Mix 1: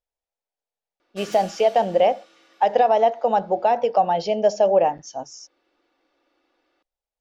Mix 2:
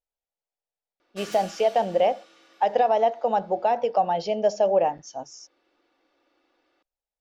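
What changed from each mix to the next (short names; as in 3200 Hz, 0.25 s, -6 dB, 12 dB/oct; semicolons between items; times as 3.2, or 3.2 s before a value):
speech -3.5 dB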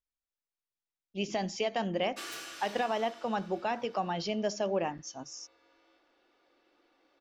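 speech: add band shelf 630 Hz -12 dB 1.2 oct; background: entry +1.00 s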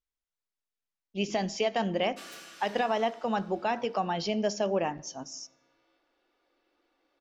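speech: send on; background -4.5 dB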